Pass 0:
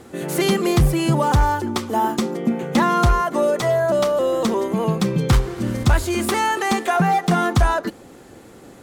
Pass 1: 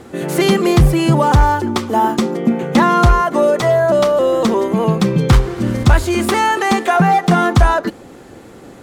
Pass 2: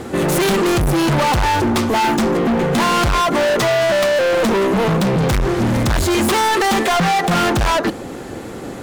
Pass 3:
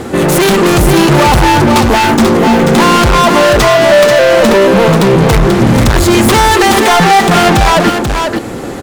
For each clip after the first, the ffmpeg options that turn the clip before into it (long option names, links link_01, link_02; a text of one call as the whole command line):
ffmpeg -i in.wav -af "highshelf=frequency=6000:gain=-6,volume=5.5dB" out.wav
ffmpeg -i in.wav -af "volume=23dB,asoftclip=hard,volume=-23dB,volume=8.5dB" out.wav
ffmpeg -i in.wav -af "aecho=1:1:487:0.562,volume=7.5dB" out.wav